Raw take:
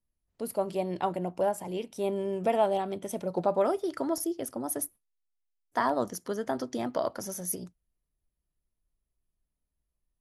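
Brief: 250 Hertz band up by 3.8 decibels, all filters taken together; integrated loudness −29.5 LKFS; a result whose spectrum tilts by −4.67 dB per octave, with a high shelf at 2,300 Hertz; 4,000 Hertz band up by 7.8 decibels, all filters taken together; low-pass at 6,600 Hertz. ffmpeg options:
ffmpeg -i in.wav -af "lowpass=6600,equalizer=frequency=250:width_type=o:gain=5,highshelf=frequency=2300:gain=6.5,equalizer=frequency=4000:width_type=o:gain=5" out.wav

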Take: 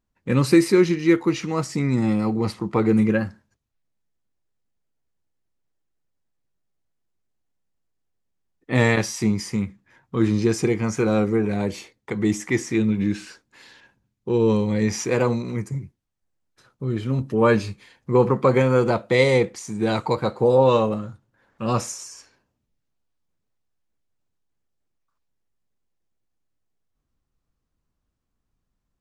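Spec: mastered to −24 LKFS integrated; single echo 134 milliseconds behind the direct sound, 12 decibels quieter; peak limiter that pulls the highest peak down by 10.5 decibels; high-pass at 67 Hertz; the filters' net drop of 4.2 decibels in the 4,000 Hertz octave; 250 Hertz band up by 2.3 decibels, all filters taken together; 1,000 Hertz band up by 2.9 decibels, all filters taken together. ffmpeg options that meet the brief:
ffmpeg -i in.wav -af "highpass=67,equalizer=frequency=250:width_type=o:gain=3,equalizer=frequency=1000:width_type=o:gain=3.5,equalizer=frequency=4000:width_type=o:gain=-5.5,alimiter=limit=-13.5dB:level=0:latency=1,aecho=1:1:134:0.251,volume=-0.5dB" out.wav

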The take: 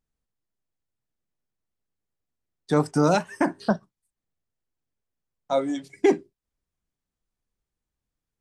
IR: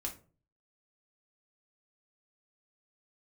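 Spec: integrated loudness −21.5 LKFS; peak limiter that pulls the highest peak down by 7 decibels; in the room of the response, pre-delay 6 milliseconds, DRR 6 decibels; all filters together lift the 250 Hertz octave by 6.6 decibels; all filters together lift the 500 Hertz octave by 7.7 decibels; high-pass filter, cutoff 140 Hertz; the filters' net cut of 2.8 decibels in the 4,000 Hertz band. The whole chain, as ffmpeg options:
-filter_complex "[0:a]highpass=140,equalizer=frequency=250:width_type=o:gain=6,equalizer=frequency=500:width_type=o:gain=8,equalizer=frequency=4000:width_type=o:gain=-3.5,alimiter=limit=-9dB:level=0:latency=1,asplit=2[link_01][link_02];[1:a]atrim=start_sample=2205,adelay=6[link_03];[link_02][link_03]afir=irnorm=-1:irlink=0,volume=-5.5dB[link_04];[link_01][link_04]amix=inputs=2:normalize=0,volume=-1dB"

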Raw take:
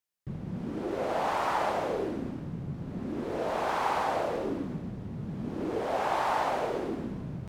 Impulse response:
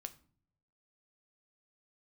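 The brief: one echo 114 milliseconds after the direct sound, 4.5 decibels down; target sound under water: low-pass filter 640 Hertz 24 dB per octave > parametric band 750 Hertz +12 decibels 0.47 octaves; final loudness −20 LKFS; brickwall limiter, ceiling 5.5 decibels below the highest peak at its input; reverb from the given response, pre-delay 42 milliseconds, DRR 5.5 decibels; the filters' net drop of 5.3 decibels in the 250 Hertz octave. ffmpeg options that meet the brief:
-filter_complex "[0:a]equalizer=frequency=250:width_type=o:gain=-8,alimiter=limit=-22.5dB:level=0:latency=1,aecho=1:1:114:0.596,asplit=2[link_01][link_02];[1:a]atrim=start_sample=2205,adelay=42[link_03];[link_02][link_03]afir=irnorm=-1:irlink=0,volume=-1.5dB[link_04];[link_01][link_04]amix=inputs=2:normalize=0,lowpass=frequency=640:width=0.5412,lowpass=frequency=640:width=1.3066,equalizer=frequency=750:width_type=o:width=0.47:gain=12,volume=11.5dB"

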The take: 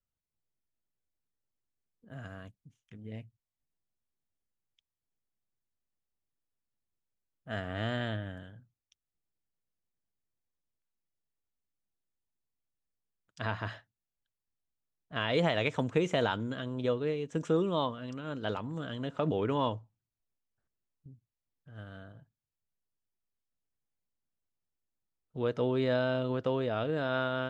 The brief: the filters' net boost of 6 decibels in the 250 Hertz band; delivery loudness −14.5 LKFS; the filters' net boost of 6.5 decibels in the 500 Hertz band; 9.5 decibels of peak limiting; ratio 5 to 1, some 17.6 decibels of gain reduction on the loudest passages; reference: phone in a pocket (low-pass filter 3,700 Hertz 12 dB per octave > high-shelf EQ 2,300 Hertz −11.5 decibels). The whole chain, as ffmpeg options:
ffmpeg -i in.wav -af "equalizer=frequency=250:width_type=o:gain=5.5,equalizer=frequency=500:width_type=o:gain=7,acompressor=threshold=-37dB:ratio=5,alimiter=level_in=6.5dB:limit=-24dB:level=0:latency=1,volume=-6.5dB,lowpass=3700,highshelf=frequency=2300:gain=-11.5,volume=28.5dB" out.wav

